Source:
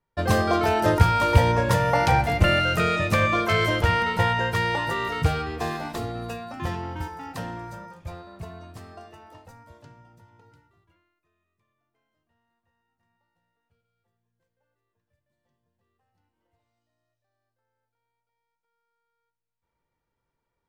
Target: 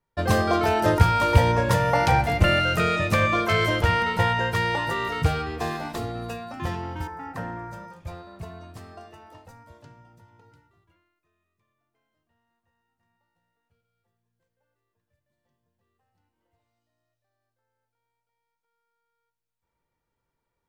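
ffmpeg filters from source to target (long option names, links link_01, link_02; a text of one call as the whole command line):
ffmpeg -i in.wav -filter_complex "[0:a]asettb=1/sr,asplit=3[link_01][link_02][link_03];[link_01]atrim=end=7.074[link_04];[link_02]atrim=start=7.07:end=7.73,asetpts=PTS-STARTPTS,afade=type=in:duration=0.004:curve=qsin,afade=type=out:start_time=0.656:duration=0.004:curve=qsin,highshelf=frequency=2400:width_type=q:width=1.5:gain=-8.5[link_05];[link_03]atrim=start=7.726[link_06];[link_04][link_05]acrossfade=duration=0.004:curve1=hsin:curve2=qsin[link_07];[link_07][link_06]acrossfade=duration=0.004:curve1=qsin:curve2=hsin" out.wav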